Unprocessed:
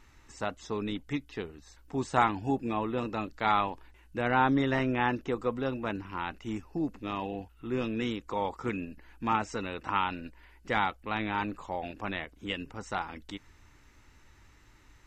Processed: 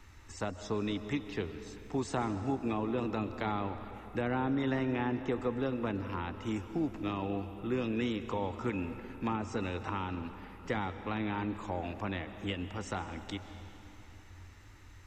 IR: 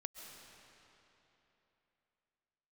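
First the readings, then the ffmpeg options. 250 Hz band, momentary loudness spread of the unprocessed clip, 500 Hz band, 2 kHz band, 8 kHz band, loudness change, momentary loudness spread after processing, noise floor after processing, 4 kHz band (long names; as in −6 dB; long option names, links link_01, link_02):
−1.0 dB, 12 LU, −2.0 dB, −6.5 dB, can't be measured, −3.5 dB, 12 LU, −53 dBFS, −4.5 dB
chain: -filter_complex "[0:a]equalizer=frequency=91:width_type=o:width=0.27:gain=14,acrossover=split=170|460[link_01][link_02][link_03];[link_01]acompressor=threshold=-45dB:ratio=4[link_04];[link_02]acompressor=threshold=-34dB:ratio=4[link_05];[link_03]acompressor=threshold=-40dB:ratio=4[link_06];[link_04][link_05][link_06]amix=inputs=3:normalize=0,asplit=2[link_07][link_08];[1:a]atrim=start_sample=2205[link_09];[link_08][link_09]afir=irnorm=-1:irlink=0,volume=3.5dB[link_10];[link_07][link_10]amix=inputs=2:normalize=0,volume=-3.5dB"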